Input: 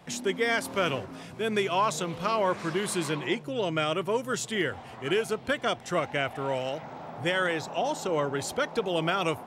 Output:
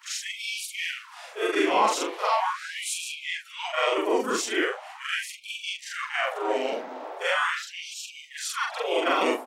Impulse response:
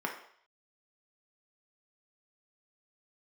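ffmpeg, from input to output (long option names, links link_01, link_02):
-filter_complex "[0:a]afftfilt=real='re':imag='-im':win_size=4096:overlap=0.75,asplit=2[link_01][link_02];[link_02]asetrate=35002,aresample=44100,atempo=1.25992,volume=-2dB[link_03];[link_01][link_03]amix=inputs=2:normalize=0,afftfilt=real='re*gte(b*sr/1024,210*pow(2300/210,0.5+0.5*sin(2*PI*0.4*pts/sr)))':imag='im*gte(b*sr/1024,210*pow(2300/210,0.5+0.5*sin(2*PI*0.4*pts/sr)))':win_size=1024:overlap=0.75,volume=6.5dB"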